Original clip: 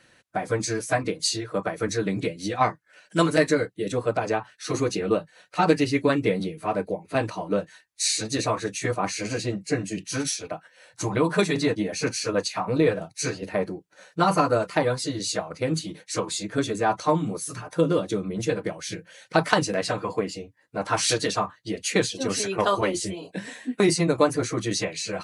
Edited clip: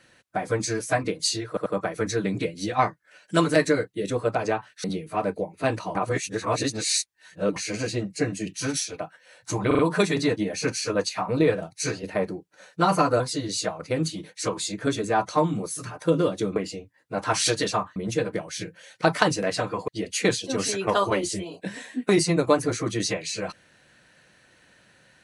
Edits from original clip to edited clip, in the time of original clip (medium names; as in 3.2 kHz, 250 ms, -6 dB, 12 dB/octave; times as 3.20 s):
1.48 s: stutter 0.09 s, 3 plays
4.66–6.35 s: delete
7.46–9.07 s: reverse
11.18 s: stutter 0.04 s, 4 plays
14.59–14.91 s: delete
20.19–21.59 s: move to 18.27 s